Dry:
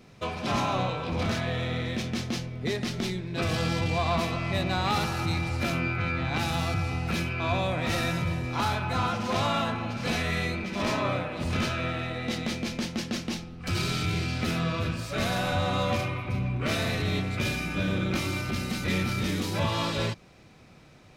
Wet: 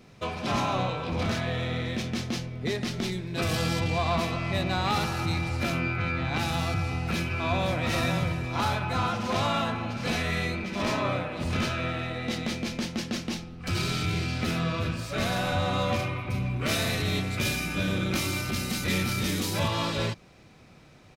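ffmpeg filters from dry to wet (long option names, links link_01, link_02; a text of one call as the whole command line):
ffmpeg -i in.wav -filter_complex "[0:a]asettb=1/sr,asplit=3[link_01][link_02][link_03];[link_01]atrim=end=3.124[link_04];[link_02]atrim=start=3.12:end=3.8,asetpts=PTS-STARTPTS,afade=type=in:duration=0.004:curve=qsin,afade=type=out:start_time=0.676:duration=0.004:curve=qsin,highshelf=frequency=8700:gain=11.5[link_05];[link_03]atrim=start=3.796[link_06];[link_04][link_05]acrossfade=duration=0.004:curve1=hsin:curve2=qsin[link_07];[link_07][link_06]acrossfade=duration=0.004:curve1=qsin:curve2=hsin,asplit=2[link_08][link_09];[link_09]afade=type=in:start_time=6.77:duration=0.01,afade=type=out:start_time=7.8:duration=0.01,aecho=0:1:520|1040|1560|2080|2600|3120:0.421697|0.210848|0.105424|0.0527121|0.026356|0.013178[link_10];[link_08][link_10]amix=inputs=2:normalize=0,asettb=1/sr,asplit=3[link_11][link_12][link_13];[link_11]atrim=end=16.304[link_14];[link_12]atrim=start=16.3:end=19.68,asetpts=PTS-STARTPTS,afade=type=in:duration=0.004:curve=qsin,afade=type=out:start_time=3.376:duration=0.004:curve=qsin,aemphasis=mode=production:type=cd[link_15];[link_13]atrim=start=19.676[link_16];[link_14][link_15]acrossfade=duration=0.004:curve1=hsin:curve2=qsin[link_17];[link_17][link_16]acrossfade=duration=0.004:curve1=qsin:curve2=hsin" out.wav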